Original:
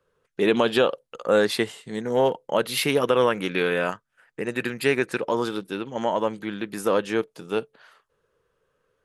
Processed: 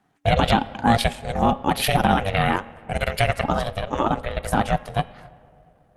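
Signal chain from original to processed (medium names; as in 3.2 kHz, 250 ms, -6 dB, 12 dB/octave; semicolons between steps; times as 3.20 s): in parallel at +0.5 dB: peak limiter -13.5 dBFS, peak gain reduction 6.5 dB; on the sum: granular stretch 0.66×, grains 44 ms; de-hum 272.5 Hz, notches 13; on a send at -18 dB: reverberation RT60 2.5 s, pre-delay 5 ms; on the sum: ring modulator 290 Hz; trim +2 dB; Opus 48 kbps 48 kHz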